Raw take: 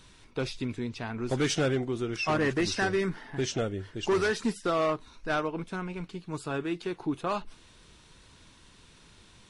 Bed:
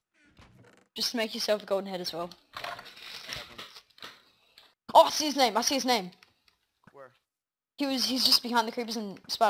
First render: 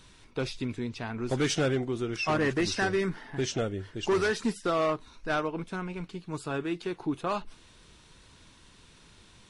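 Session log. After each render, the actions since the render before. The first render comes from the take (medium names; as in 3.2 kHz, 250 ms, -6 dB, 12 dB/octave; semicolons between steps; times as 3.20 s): no audible change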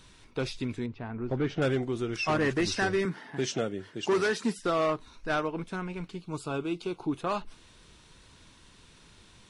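0.86–1.62 s: tape spacing loss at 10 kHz 39 dB; 3.05–4.59 s: high-pass 130 Hz 24 dB/octave; 6.21–7.12 s: Butterworth band-stop 1.8 kHz, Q 2.7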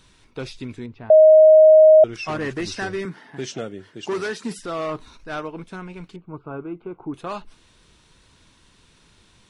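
1.10–2.04 s: bleep 626 Hz -6.5 dBFS; 4.47–5.38 s: transient shaper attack -4 dB, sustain +6 dB; 6.16–7.14 s: low-pass 1.8 kHz 24 dB/octave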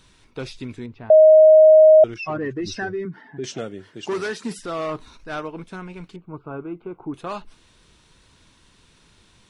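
2.14–3.44 s: spectral contrast enhancement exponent 1.6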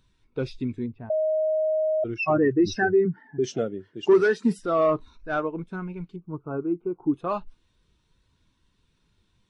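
compressor with a negative ratio -20 dBFS, ratio -1; spectral contrast expander 1.5:1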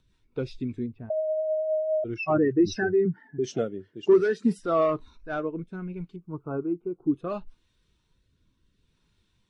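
rotary cabinet horn 5 Hz, later 0.7 Hz, at 2.83 s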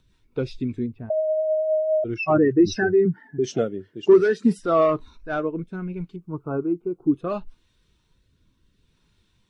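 trim +4.5 dB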